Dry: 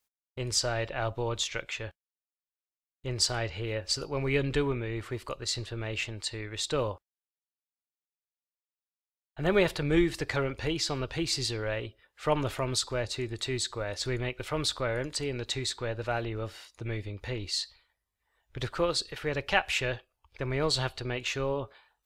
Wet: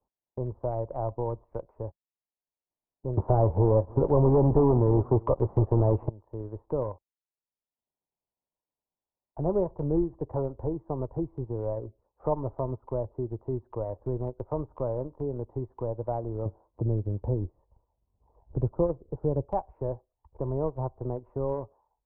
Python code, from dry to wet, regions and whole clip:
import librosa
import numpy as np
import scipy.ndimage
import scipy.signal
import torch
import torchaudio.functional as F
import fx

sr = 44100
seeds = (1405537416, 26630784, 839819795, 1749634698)

y = fx.chain(x, sr, fx.leveller(passes=5),
    fx.echo_single(ms=304, db=-18.0), at=(3.17, 6.09))
y = fx.chain(y, sr, fx.highpass(hz=140.0, slope=6),
    fx.tilt_eq(slope=-4.0), at=(16.45, 19.45))
y = scipy.signal.sosfilt(scipy.signal.cheby1(5, 1.0, 1000.0, 'lowpass', fs=sr, output='sos'), y)
y = fx.transient(y, sr, attack_db=1, sustain_db=-7)
y = fx.band_squash(y, sr, depth_pct=40)